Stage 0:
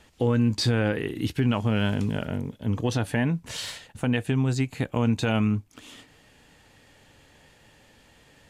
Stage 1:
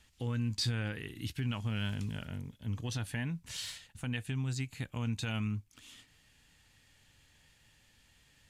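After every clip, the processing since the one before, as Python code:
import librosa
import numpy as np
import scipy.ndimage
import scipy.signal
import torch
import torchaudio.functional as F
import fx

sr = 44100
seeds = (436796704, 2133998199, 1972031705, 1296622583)

y = fx.peak_eq(x, sr, hz=490.0, db=-14.0, octaves=2.8)
y = y * librosa.db_to_amplitude(-5.0)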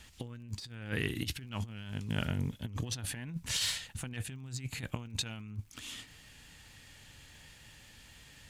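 y = fx.diode_clip(x, sr, knee_db=-25.0)
y = fx.over_compress(y, sr, threshold_db=-41.0, ratio=-0.5)
y = fx.dmg_crackle(y, sr, seeds[0], per_s=52.0, level_db=-59.0)
y = y * librosa.db_to_amplitude(4.5)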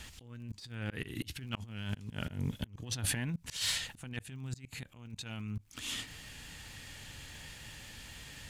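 y = fx.auto_swell(x, sr, attack_ms=348.0)
y = y * librosa.db_to_amplitude(6.5)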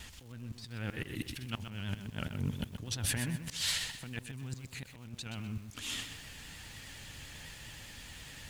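y = fx.dmg_crackle(x, sr, seeds[1], per_s=350.0, level_db=-52.0)
y = fx.vibrato(y, sr, rate_hz=9.8, depth_cents=78.0)
y = fx.echo_crushed(y, sr, ms=126, feedback_pct=35, bits=9, wet_db=-8.5)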